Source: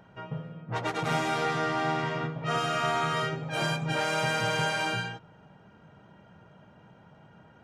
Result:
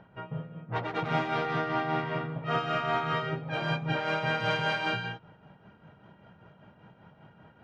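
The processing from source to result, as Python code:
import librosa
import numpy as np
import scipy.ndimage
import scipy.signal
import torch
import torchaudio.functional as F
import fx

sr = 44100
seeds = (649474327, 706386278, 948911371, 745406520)

y = fx.high_shelf(x, sr, hz=3100.0, db=fx.steps((0.0, 5.5), (4.39, 11.5)))
y = y * (1.0 - 0.51 / 2.0 + 0.51 / 2.0 * np.cos(2.0 * np.pi * 5.1 * (np.arange(len(y)) / sr)))
y = fx.air_absorb(y, sr, metres=320.0)
y = y * librosa.db_to_amplitude(2.0)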